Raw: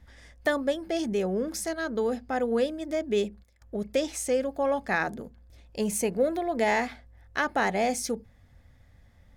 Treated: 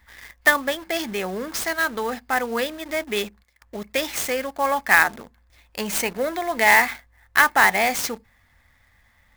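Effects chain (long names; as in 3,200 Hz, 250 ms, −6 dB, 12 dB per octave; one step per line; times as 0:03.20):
graphic EQ with 10 bands 125 Hz −4 dB, 500 Hz −3 dB, 1,000 Hz +11 dB, 2,000 Hz +12 dB, 4,000 Hz +7 dB, 8,000 Hz +8 dB
in parallel at −4 dB: bit reduction 6 bits
on the sum: converter with an unsteady clock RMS 0.022 ms
level −5 dB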